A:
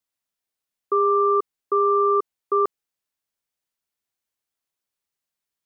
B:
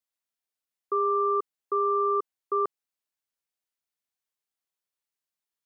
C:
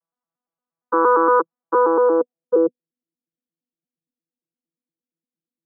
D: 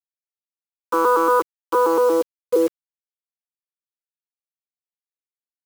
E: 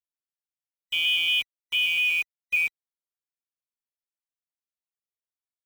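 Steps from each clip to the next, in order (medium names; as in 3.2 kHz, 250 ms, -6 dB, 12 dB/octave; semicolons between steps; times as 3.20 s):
bass shelf 280 Hz -5.5 dB; trim -5 dB
vocoder on a broken chord bare fifth, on E3, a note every 116 ms; low-pass sweep 1.1 kHz -> 330 Hz, 1.62–2.96 s; trim +6 dB
in parallel at -2.5 dB: peak limiter -13.5 dBFS, peak gain reduction 7.5 dB; on the sum: bit crusher 5-bit; trim -4.5 dB
split-band scrambler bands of 2 kHz; trim -7 dB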